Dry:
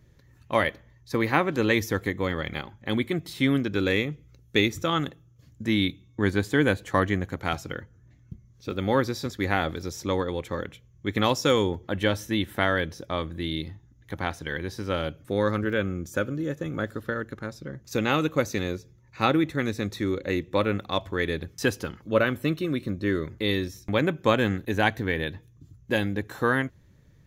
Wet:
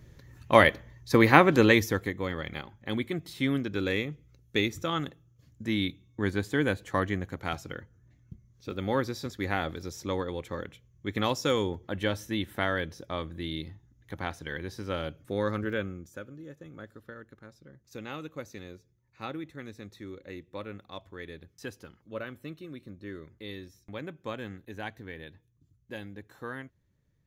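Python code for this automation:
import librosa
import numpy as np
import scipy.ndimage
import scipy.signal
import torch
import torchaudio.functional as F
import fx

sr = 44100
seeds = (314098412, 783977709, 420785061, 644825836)

y = fx.gain(x, sr, db=fx.line((1.55, 5.0), (2.14, -5.0), (15.76, -5.0), (16.21, -15.5)))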